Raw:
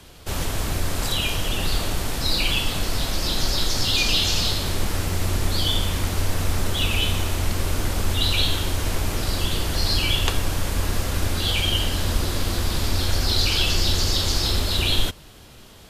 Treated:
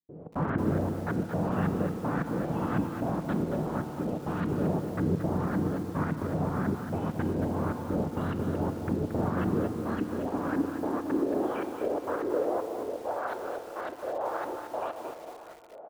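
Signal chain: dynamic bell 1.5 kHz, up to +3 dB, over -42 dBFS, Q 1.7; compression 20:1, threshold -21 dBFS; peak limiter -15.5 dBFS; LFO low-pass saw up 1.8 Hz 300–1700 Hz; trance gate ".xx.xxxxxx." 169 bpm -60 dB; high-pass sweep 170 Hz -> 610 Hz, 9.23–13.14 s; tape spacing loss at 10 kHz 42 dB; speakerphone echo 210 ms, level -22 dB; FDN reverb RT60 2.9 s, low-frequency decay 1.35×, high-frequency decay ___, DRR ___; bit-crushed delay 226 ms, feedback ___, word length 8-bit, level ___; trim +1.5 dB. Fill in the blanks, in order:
0.6×, 9 dB, 35%, -7 dB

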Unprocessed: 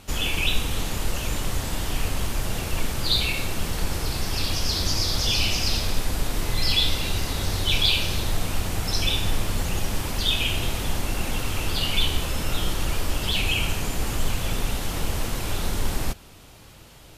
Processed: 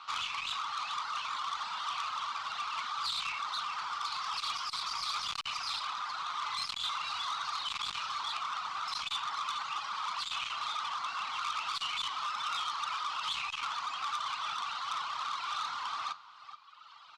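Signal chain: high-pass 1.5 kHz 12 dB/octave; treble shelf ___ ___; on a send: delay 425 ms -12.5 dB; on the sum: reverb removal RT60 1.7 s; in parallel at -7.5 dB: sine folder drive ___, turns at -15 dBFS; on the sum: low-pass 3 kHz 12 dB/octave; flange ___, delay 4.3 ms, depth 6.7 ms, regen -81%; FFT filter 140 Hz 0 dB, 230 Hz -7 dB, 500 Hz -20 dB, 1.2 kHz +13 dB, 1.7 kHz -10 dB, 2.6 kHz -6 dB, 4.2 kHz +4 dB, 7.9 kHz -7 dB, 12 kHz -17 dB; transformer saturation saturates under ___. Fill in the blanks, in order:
2.1 kHz, -8 dB, 17 dB, 0.59 Hz, 3.5 kHz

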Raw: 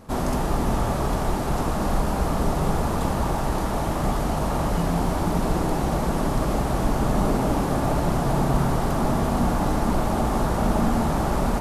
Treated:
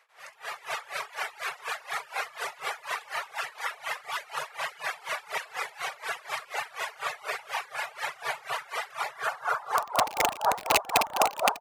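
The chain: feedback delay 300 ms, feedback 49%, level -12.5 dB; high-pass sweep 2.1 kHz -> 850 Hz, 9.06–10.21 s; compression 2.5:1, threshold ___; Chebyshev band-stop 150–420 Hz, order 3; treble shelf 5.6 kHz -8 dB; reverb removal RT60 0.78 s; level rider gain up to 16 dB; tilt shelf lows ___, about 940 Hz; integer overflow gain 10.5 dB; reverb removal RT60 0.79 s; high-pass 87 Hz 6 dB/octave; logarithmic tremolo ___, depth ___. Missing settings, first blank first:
-33 dBFS, +7 dB, 4.1 Hz, 23 dB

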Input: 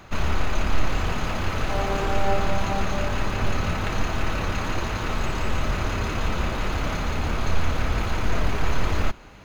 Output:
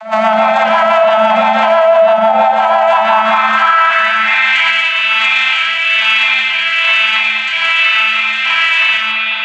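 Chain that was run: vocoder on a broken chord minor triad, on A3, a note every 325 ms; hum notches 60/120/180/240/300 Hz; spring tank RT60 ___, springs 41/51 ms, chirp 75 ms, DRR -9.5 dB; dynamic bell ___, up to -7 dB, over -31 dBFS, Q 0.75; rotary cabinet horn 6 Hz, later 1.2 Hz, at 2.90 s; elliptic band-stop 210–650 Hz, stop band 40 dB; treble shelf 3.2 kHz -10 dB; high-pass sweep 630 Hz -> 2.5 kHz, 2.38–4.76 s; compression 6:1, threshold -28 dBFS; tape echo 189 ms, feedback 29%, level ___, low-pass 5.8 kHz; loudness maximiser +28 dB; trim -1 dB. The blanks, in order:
2.6 s, 320 Hz, -11 dB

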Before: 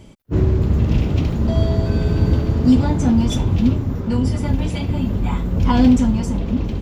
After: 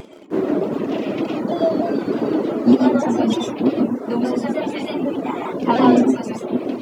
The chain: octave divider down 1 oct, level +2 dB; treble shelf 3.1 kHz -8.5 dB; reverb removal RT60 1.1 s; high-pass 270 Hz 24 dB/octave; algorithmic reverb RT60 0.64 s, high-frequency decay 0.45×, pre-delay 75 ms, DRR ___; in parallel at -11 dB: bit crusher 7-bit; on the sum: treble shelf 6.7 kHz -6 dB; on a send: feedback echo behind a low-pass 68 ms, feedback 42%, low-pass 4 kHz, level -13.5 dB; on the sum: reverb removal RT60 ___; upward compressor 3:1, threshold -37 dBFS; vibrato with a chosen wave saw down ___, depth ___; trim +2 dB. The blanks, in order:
-2.5 dB, 0.54 s, 3.3 Hz, 100 cents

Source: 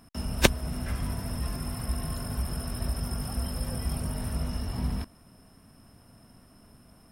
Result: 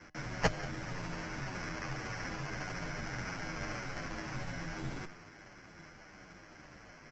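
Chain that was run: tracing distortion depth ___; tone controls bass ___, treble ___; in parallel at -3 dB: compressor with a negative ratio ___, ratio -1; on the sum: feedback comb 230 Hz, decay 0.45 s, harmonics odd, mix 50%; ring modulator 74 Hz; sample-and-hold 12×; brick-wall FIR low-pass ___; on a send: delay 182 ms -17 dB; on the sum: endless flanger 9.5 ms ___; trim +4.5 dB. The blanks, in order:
0.43 ms, -7 dB, +7 dB, -43 dBFS, 7.8 kHz, -1.7 Hz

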